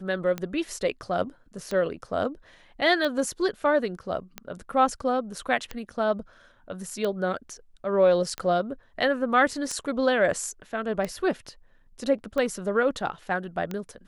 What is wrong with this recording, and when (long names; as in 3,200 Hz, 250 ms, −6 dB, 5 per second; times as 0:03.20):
scratch tick 45 rpm −17 dBFS